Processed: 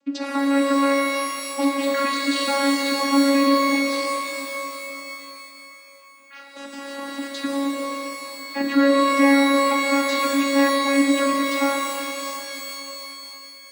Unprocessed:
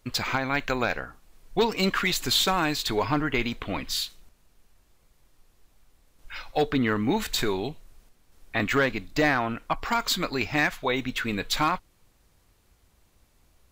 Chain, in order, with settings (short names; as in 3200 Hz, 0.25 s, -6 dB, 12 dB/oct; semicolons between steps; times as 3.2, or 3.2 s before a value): 6.39–7.18 wrapped overs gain 29 dB; vocoder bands 16, saw 278 Hz; shimmer reverb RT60 3.1 s, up +12 st, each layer -2 dB, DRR 1.5 dB; gain +2 dB